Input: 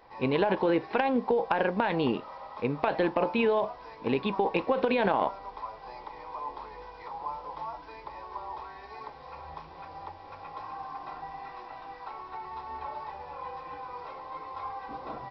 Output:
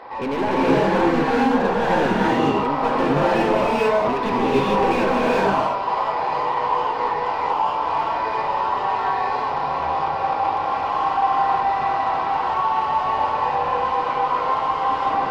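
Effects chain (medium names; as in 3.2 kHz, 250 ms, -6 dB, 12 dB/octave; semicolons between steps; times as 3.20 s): dynamic bell 670 Hz, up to -5 dB, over -40 dBFS, Q 0.78; overdrive pedal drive 31 dB, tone 1 kHz, clips at -14 dBFS; gated-style reverb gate 480 ms rising, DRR -6.5 dB; trim -2.5 dB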